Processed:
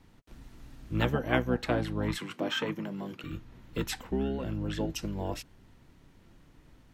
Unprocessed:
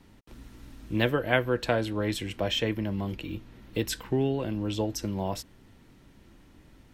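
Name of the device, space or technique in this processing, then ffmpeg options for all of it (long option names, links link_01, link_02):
octave pedal: -filter_complex "[0:a]asplit=2[link_01][link_02];[link_02]asetrate=22050,aresample=44100,atempo=2,volume=-1dB[link_03];[link_01][link_03]amix=inputs=2:normalize=0,asettb=1/sr,asplit=3[link_04][link_05][link_06];[link_04]atrim=end=2.184[link_07];[link_05]atrim=start=2.18:end=3.24,asetpts=PTS-STARTPTS,afade=type=in:duration=0.004:curve=qsin,afade=type=out:start_time=1.056:duration=0.004:curve=qsin,highpass=frequency=150:width=0.5412,highpass=frequency=150:width=1.3066[link_08];[link_06]atrim=start=3.236[link_09];[link_07][link_08]acrossfade=duration=0.004:curve1=hsin:curve2=qsin[link_10];[link_10][link_09]acrossfade=duration=0.004:curve1=qsin:curve2=hsin,volume=-5dB"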